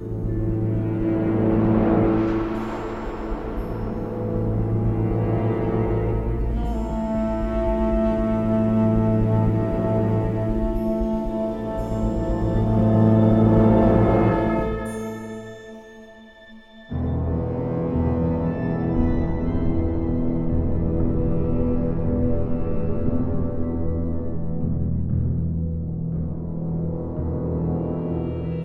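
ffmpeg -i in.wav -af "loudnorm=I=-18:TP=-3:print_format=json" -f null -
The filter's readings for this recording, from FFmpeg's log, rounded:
"input_i" : "-23.2",
"input_tp" : "-4.4",
"input_lra" : "7.2",
"input_thresh" : "-33.4",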